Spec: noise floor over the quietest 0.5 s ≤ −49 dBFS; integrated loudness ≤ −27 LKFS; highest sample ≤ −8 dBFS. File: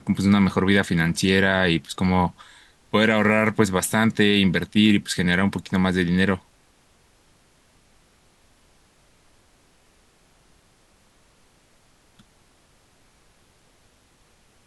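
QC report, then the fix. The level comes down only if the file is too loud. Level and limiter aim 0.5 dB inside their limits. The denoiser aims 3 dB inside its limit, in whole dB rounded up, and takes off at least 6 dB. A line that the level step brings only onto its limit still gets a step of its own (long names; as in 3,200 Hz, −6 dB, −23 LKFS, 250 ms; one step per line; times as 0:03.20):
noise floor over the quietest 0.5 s −59 dBFS: in spec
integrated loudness −20.5 LKFS: out of spec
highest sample −5.5 dBFS: out of spec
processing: level −7 dB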